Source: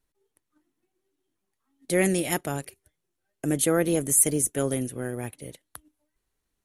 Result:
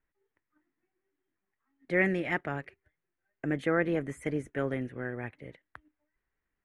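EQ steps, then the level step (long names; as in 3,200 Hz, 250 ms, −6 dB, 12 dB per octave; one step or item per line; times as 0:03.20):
low-pass with resonance 1,900 Hz, resonance Q 2.8
−5.5 dB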